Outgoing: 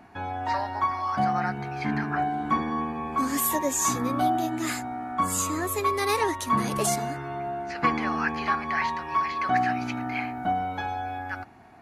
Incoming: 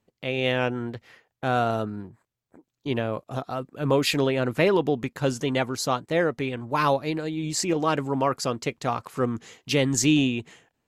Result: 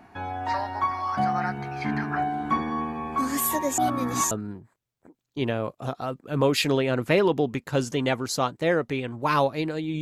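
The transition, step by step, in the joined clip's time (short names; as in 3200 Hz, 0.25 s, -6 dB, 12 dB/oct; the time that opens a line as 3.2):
outgoing
3.78–4.31 reverse
4.31 switch to incoming from 1.8 s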